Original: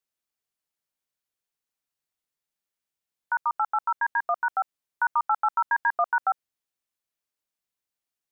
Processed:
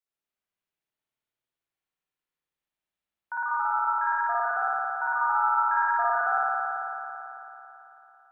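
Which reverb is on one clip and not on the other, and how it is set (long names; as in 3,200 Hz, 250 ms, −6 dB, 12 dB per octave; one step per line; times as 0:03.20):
spring reverb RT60 3.4 s, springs 55 ms, chirp 60 ms, DRR −10 dB
level −9 dB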